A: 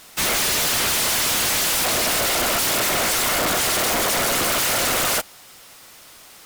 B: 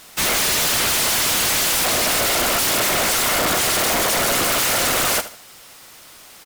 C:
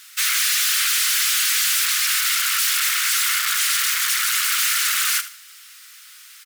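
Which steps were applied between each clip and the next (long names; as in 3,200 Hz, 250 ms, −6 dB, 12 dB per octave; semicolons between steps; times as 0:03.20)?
repeating echo 76 ms, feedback 31%, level −14 dB; level +1.5 dB
Butterworth high-pass 1,300 Hz 48 dB per octave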